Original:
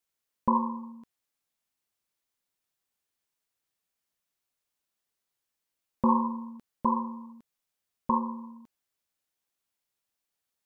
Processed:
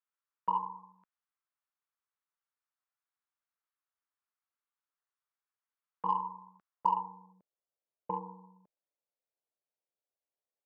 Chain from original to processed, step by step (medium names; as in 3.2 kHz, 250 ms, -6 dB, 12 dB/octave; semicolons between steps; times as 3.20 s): band-pass sweep 1.3 kHz -> 600 Hz, 6.63–7.38 s; frequency shift -44 Hz; Chebyshev shaper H 7 -37 dB, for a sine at -14.5 dBFS